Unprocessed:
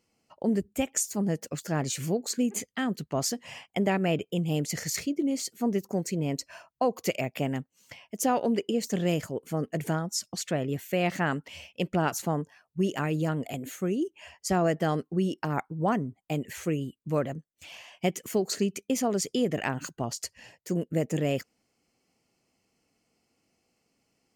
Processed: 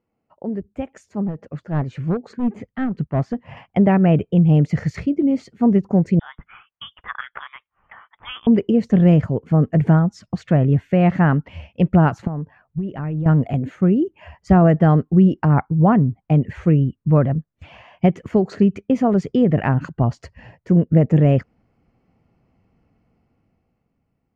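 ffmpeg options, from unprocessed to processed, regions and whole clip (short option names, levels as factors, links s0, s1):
-filter_complex "[0:a]asettb=1/sr,asplit=3[s0][s1][s2];[s0]atrim=end=1.254[s3];[s1]atrim=start=1.25:end=3.57,asetpts=PTS-STARTPTS,afade=t=in:d=0.004:c=qsin,afade=t=out:st=2.316:d=0.004:c=qsin,highshelf=f=4500:g=-9.5,asoftclip=type=hard:threshold=0.0596,tremolo=f=5.7:d=0.55[s4];[s2]atrim=start=3.566[s5];[s3][s4]acrossfade=d=0.004:c1=hsin:c2=qsin[s6];[s6][s5]acrossfade=d=0.004:c1=qsin:c2=hsin,asettb=1/sr,asplit=3[s7][s8][s9];[s7]atrim=end=6.194[s10];[s8]atrim=start=6.19:end=8.47,asetpts=PTS-STARTPTS,afade=t=in:d=0.004:c=qsin,afade=t=out:st=2.276:d=0.004:c=qsin,highpass=f=890:w=0.5412,highpass=f=890:w=1.3066,lowpass=f=3400:t=q:w=0.5098,lowpass=f=3400:t=q:w=0.6013,lowpass=f=3400:t=q:w=0.9,lowpass=f=3400:t=q:w=2.563,afreqshift=-4000[s11];[s9]atrim=start=8.466[s12];[s10][s11]acrossfade=d=0.004:c1=hsin:c2=qsin[s13];[s13][s12]acrossfade=d=0.004:c1=qsin:c2=hsin,asettb=1/sr,asplit=3[s14][s15][s16];[s14]atrim=end=12.274[s17];[s15]atrim=start=12.27:end=13.26,asetpts=PTS-STARTPTS,afade=t=in:d=0.004:c=qsin,afade=t=out:st=0.986:d=0.004:c=qsin,lowpass=3300,acompressor=threshold=0.0158:ratio=5:attack=3.2:release=140:knee=1:detection=peak,asoftclip=type=hard:threshold=0.0299[s18];[s16]atrim=start=13.256[s19];[s17][s18]acrossfade=d=0.004:c1=hsin:c2=qsin[s20];[s20][s19]acrossfade=d=0.004:c1=qsin:c2=hsin,dynaudnorm=f=240:g=11:m=3.76,asubboost=boost=4:cutoff=170,lowpass=1400"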